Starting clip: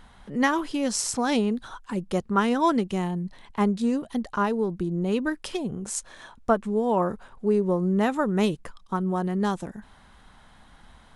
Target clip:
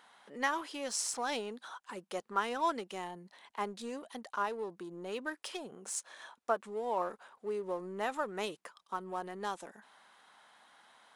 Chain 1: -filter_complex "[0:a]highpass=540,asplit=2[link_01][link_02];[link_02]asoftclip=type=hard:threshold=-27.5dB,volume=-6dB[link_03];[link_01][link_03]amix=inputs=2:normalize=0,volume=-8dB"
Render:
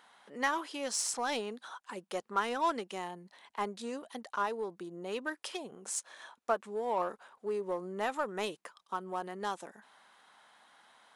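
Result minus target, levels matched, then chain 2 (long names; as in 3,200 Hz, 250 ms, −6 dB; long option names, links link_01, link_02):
hard clipping: distortion −5 dB
-filter_complex "[0:a]highpass=540,asplit=2[link_01][link_02];[link_02]asoftclip=type=hard:threshold=-39.5dB,volume=-6dB[link_03];[link_01][link_03]amix=inputs=2:normalize=0,volume=-8dB"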